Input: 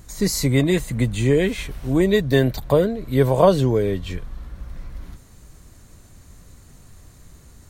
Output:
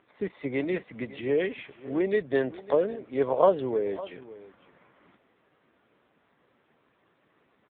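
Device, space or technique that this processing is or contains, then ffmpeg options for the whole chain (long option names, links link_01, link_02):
satellite phone: -af "highpass=370,lowpass=3300,aecho=1:1:553:0.133,volume=-4dB" -ar 8000 -c:a libopencore_amrnb -b:a 5900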